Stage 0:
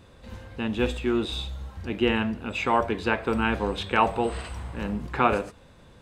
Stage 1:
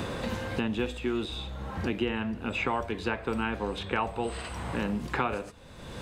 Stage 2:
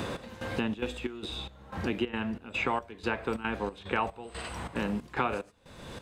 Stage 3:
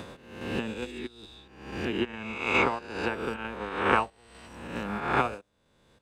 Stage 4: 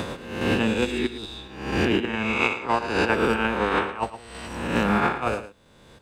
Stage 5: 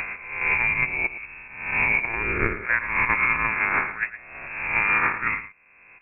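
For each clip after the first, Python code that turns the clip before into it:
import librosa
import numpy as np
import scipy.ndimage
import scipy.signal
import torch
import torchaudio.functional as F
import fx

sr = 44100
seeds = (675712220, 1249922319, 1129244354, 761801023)

y1 = fx.band_squash(x, sr, depth_pct=100)
y1 = y1 * 10.0 ** (-6.0 / 20.0)
y2 = fx.low_shelf(y1, sr, hz=110.0, db=-5.0)
y2 = fx.step_gate(y2, sr, bpm=183, pattern='xx...xxxx.xxx..x', floor_db=-12.0, edge_ms=4.5)
y3 = fx.spec_swells(y2, sr, rise_s=1.9)
y3 = fx.upward_expand(y3, sr, threshold_db=-40.0, expansion=2.5)
y3 = y3 * 10.0 ** (4.0 / 20.0)
y4 = fx.over_compress(y3, sr, threshold_db=-31.0, ratio=-0.5)
y4 = y4 + 10.0 ** (-13.0 / 20.0) * np.pad(y4, (int(112 * sr / 1000.0), 0))[:len(y4)]
y4 = y4 * 10.0 ** (9.0 / 20.0)
y5 = fx.freq_invert(y4, sr, carrier_hz=2600)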